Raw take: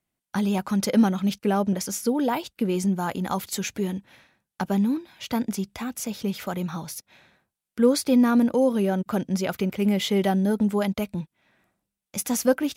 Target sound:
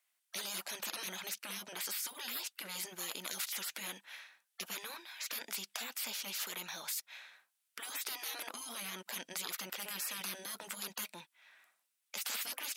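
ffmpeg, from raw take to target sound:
-af "highpass=1.3k,afftfilt=real='re*lt(hypot(re,im),0.0178)':imag='im*lt(hypot(re,im),0.0178)':win_size=1024:overlap=0.75,volume=5dB"

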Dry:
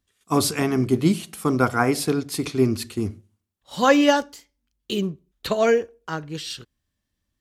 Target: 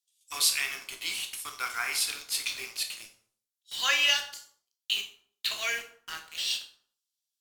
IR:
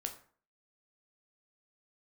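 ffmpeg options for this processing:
-filter_complex "[0:a]highpass=f=2.6k:t=q:w=1.7,acrossover=split=3900[a][b];[a]acrusher=bits=6:mix=0:aa=0.000001[c];[c][b]amix=inputs=2:normalize=0[d];[1:a]atrim=start_sample=2205,afade=t=out:st=0.4:d=0.01,atrim=end_sample=18081,asetrate=36162,aresample=44100[e];[d][e]afir=irnorm=-1:irlink=0"

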